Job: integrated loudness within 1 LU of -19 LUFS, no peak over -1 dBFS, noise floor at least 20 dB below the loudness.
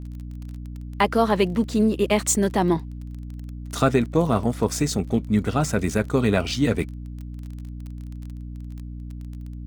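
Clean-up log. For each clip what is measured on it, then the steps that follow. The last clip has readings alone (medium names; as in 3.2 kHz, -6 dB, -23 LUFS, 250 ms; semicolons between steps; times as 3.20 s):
tick rate 24 per s; hum 60 Hz; highest harmonic 300 Hz; hum level -32 dBFS; loudness -22.5 LUFS; peak level -4.0 dBFS; loudness target -19.0 LUFS
-> de-click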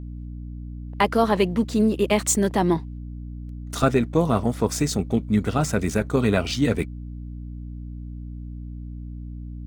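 tick rate 0.41 per s; hum 60 Hz; highest harmonic 300 Hz; hum level -32 dBFS
-> hum notches 60/120/180/240/300 Hz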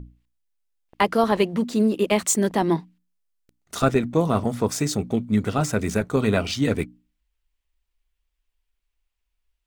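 hum not found; loudness -22.5 LUFS; peak level -5.0 dBFS; loudness target -19.0 LUFS
-> trim +3.5 dB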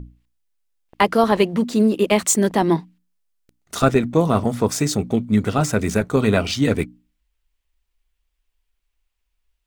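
loudness -19.0 LUFS; peak level -1.5 dBFS; noise floor -75 dBFS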